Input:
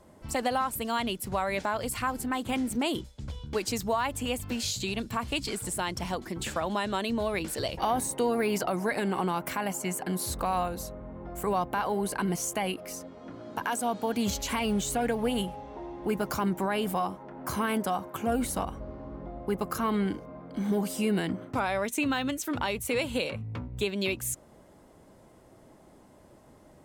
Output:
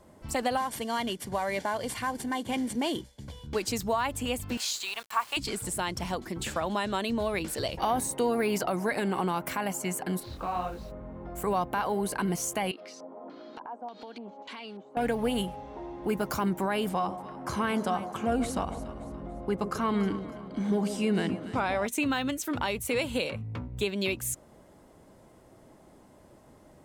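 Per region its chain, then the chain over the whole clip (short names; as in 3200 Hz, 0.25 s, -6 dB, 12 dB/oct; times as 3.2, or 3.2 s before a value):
0.57–3.47 CVSD 64 kbps + notch comb 1300 Hz
4.57–5.37 resonant high-pass 1000 Hz, resonance Q 1.8 + requantised 8-bit, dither none
10.19–10.9 inverse Chebyshev low-pass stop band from 9100 Hz, stop band 50 dB + added noise pink -54 dBFS + detuned doubles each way 32 cents
12.71–14.97 HPF 230 Hz 24 dB/oct + compressor 4:1, threshold -42 dBFS + LFO low-pass square 1.7 Hz 860–4300 Hz
16.89–21.87 LPF 7600 Hz + echo with dull and thin repeats by turns 0.143 s, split 880 Hz, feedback 61%, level -9.5 dB
whole clip: dry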